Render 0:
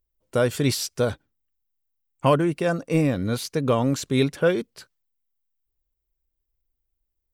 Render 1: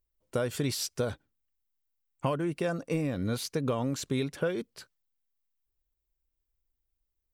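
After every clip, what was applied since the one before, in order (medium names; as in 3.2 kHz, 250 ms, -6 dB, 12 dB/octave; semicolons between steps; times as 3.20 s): compression 10:1, threshold -22 dBFS, peak gain reduction 9.5 dB; trim -3.5 dB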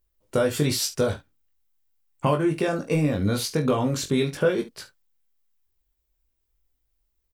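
early reflections 20 ms -4 dB, 44 ms -13 dB, 71 ms -15 dB; trim +6 dB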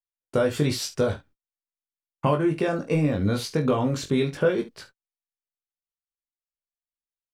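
low-pass 3.9 kHz 6 dB/octave; gate -50 dBFS, range -37 dB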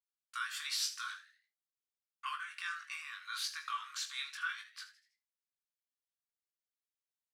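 rippled Chebyshev high-pass 1.1 kHz, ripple 3 dB; frequency-shifting echo 81 ms, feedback 43%, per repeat +130 Hz, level -15 dB; trim -3.5 dB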